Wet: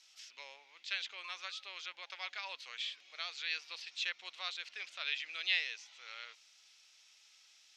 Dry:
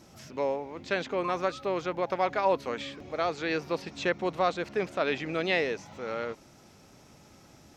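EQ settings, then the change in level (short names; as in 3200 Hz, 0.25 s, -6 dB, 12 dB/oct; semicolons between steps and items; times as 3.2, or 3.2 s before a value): ladder band-pass 4000 Hz, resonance 30%; +10.5 dB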